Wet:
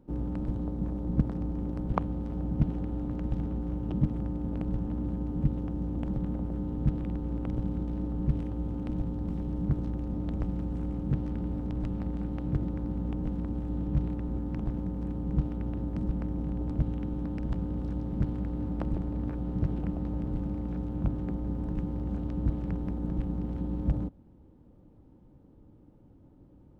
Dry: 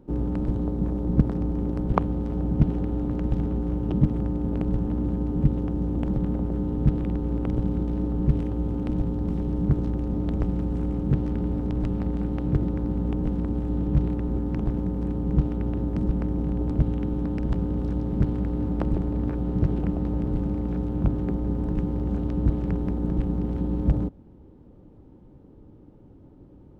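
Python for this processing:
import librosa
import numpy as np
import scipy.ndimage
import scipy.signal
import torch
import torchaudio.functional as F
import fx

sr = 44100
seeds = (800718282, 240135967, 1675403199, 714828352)

y = fx.peak_eq(x, sr, hz=400.0, db=-5.5, octaves=0.3)
y = F.gain(torch.from_numpy(y), -6.0).numpy()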